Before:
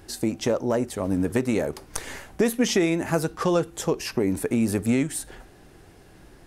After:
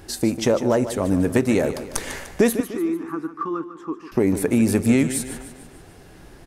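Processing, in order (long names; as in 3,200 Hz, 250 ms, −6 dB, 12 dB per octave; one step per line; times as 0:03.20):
0:02.60–0:04.12: pair of resonant band-passes 600 Hz, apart 1.9 octaves
on a send: repeating echo 149 ms, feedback 49%, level −12 dB
on the sum: level +4.5 dB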